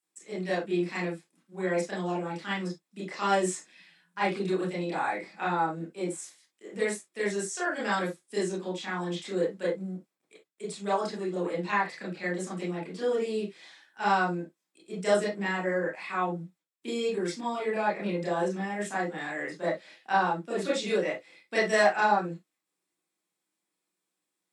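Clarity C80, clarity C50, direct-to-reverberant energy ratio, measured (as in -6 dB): 14.5 dB, 5.0 dB, -6.5 dB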